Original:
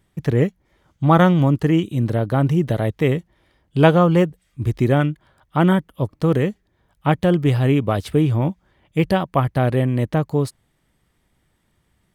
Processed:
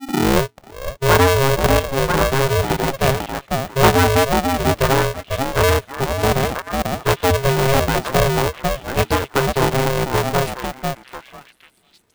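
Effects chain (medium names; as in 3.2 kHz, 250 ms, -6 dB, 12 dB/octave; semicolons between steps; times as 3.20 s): tape start-up on the opening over 0.62 s; repeats whose band climbs or falls 493 ms, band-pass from 420 Hz, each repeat 1.4 oct, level -0.5 dB; polarity switched at an audio rate 270 Hz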